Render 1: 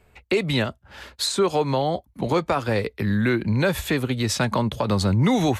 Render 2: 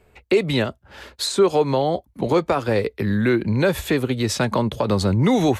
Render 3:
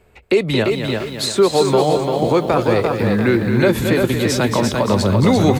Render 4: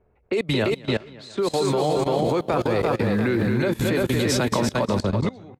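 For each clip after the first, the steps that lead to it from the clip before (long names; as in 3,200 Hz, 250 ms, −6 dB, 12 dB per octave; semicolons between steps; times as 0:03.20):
parametric band 410 Hz +5 dB 1.2 octaves
single-tap delay 223 ms −8 dB; feedback echo at a low word length 344 ms, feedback 35%, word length 8 bits, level −4 dB; level +2.5 dB
fade-out on the ending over 0.91 s; low-pass that shuts in the quiet parts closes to 1,100 Hz, open at −13.5 dBFS; output level in coarse steps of 21 dB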